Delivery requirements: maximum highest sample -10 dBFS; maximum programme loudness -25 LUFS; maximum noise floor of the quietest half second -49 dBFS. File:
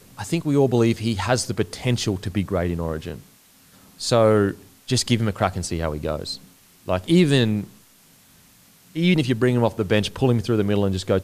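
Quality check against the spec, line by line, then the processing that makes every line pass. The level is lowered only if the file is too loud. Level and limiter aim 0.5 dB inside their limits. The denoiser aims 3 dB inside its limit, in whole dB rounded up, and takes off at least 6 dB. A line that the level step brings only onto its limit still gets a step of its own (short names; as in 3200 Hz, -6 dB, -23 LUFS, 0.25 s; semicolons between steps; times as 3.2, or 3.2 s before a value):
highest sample -5.5 dBFS: fail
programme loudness -22.0 LUFS: fail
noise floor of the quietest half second -54 dBFS: OK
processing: gain -3.5 dB; limiter -10.5 dBFS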